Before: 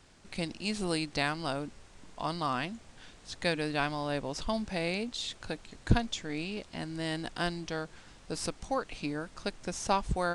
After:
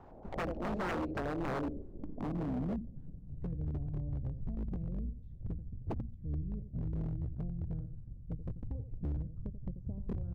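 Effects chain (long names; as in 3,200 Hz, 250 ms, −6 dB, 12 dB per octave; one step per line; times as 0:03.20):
sub-octave generator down 2 octaves, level −2 dB
in parallel at −2 dB: output level in coarse steps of 17 dB
on the sum: auto-filter low-pass square 4.4 Hz 570–7,500 Hz
parametric band 70 Hz +3.5 dB 0.22 octaves
downward compressor 16 to 1, threshold −30 dBFS, peak gain reduction 20.5 dB
on a send: repeating echo 86 ms, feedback 20%, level −10.5 dB
on the sum: low-pass filter sweep 840 Hz → 120 Hz, 0:00.21–0:03.65
wave folding −32.5 dBFS
level +2.5 dB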